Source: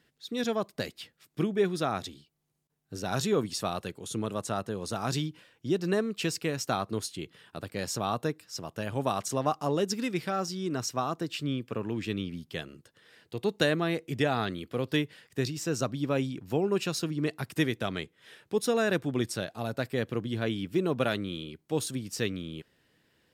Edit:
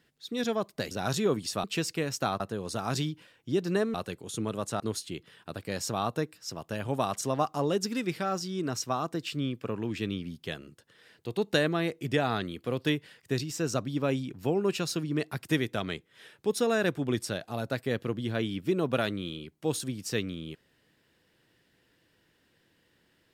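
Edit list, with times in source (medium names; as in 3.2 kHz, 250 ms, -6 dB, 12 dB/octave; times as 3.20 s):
0.91–2.98 s: delete
3.71–4.57 s: swap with 6.11–6.87 s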